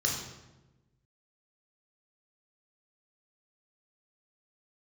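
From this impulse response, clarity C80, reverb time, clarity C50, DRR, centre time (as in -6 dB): 6.0 dB, 1.1 s, 3.5 dB, -1.5 dB, 46 ms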